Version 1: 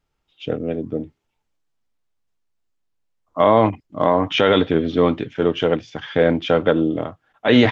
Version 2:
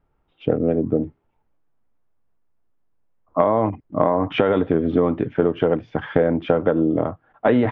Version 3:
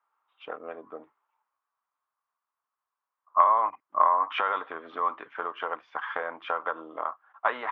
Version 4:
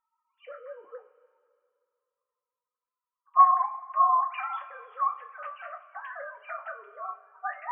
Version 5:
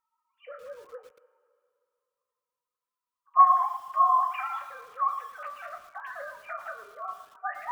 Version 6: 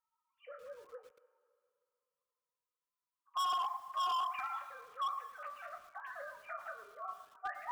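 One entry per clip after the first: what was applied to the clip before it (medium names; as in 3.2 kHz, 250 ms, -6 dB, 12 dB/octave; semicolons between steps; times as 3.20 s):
low-pass 1.3 kHz 12 dB/octave; compression 12:1, threshold -21 dBFS, peak gain reduction 12.5 dB; trim +7.5 dB
resonant high-pass 1.1 kHz, resonance Q 4.5; trim -6.5 dB
formants replaced by sine waves; two-slope reverb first 0.24 s, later 2.3 s, from -19 dB, DRR 1.5 dB; trim -3.5 dB
bit-crushed delay 113 ms, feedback 35%, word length 8-bit, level -10.5 dB
hard clipper -25 dBFS, distortion -4 dB; trim -7 dB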